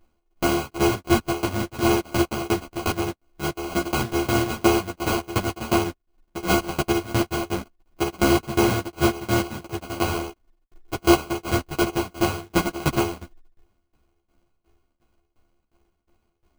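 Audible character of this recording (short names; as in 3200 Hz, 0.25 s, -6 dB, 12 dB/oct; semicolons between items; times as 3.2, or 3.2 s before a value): a buzz of ramps at a fixed pitch in blocks of 128 samples; tremolo saw down 2.8 Hz, depth 95%; aliases and images of a low sample rate 1800 Hz, jitter 0%; a shimmering, thickened sound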